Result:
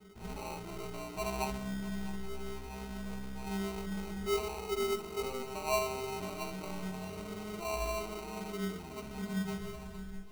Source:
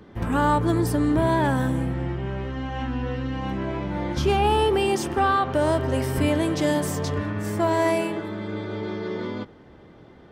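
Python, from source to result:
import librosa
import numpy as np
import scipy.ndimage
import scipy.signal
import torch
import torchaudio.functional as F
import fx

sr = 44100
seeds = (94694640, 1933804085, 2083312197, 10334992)

p1 = fx.tape_stop_end(x, sr, length_s=1.87)
p2 = scipy.signal.sosfilt(scipy.signal.butter(4, 2700.0, 'lowpass', fs=sr, output='sos'), p1)
p3 = fx.peak_eq(p2, sr, hz=67.0, db=10.5, octaves=0.48)
p4 = fx.hum_notches(p3, sr, base_hz=50, count=4)
p5 = fx.rider(p4, sr, range_db=4, speed_s=0.5)
p6 = p4 + F.gain(torch.from_numpy(p5), 1.0).numpy()
p7 = 10.0 ** (-16.5 / 20.0) * np.tanh(p6 / 10.0 ** (-16.5 / 20.0))
p8 = fx.stiff_resonator(p7, sr, f0_hz=190.0, decay_s=0.56, stiffness=0.03)
p9 = fx.sample_hold(p8, sr, seeds[0], rate_hz=1700.0, jitter_pct=0)
y = p9 + fx.echo_feedback(p9, sr, ms=654, feedback_pct=56, wet_db=-17, dry=0)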